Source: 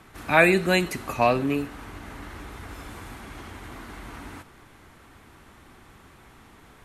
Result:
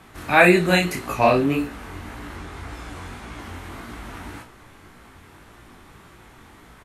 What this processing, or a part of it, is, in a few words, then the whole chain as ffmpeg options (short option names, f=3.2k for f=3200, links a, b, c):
double-tracked vocal: -filter_complex "[0:a]asettb=1/sr,asplit=3[a][b][c];[a]atrim=end=2.364[d];[b]atrim=start=2.36:end=3.39,asetpts=PTS-STARTPTS,afade=t=in:d=0.004:c=qsin,afade=t=out:st=1.026:d=0.004:c=qsin,lowpass=9.8k[e];[c]atrim=start=3.386[f];[d][e]acrossfade=d=0.004:c1=hsin:c2=qsin[g];[g][f]acrossfade=d=0.004:c1=qsin:c2=hsin,asplit=2[h][i];[i]adelay=34,volume=-8.5dB[j];[h][j]amix=inputs=2:normalize=0,flanger=delay=16.5:depth=7.1:speed=1.8,volume=6dB"